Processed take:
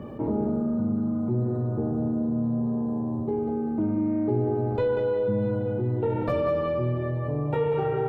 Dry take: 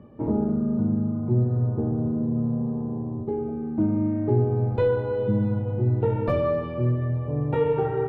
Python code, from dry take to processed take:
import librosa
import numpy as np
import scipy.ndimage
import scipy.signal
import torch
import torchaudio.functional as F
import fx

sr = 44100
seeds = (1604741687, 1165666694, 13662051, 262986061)

y = fx.bass_treble(x, sr, bass_db=-4, treble_db=4)
y = fx.echo_feedback(y, sr, ms=190, feedback_pct=28, wet_db=-7)
y = fx.env_flatten(y, sr, amount_pct=50)
y = y * librosa.db_to_amplitude(-3.5)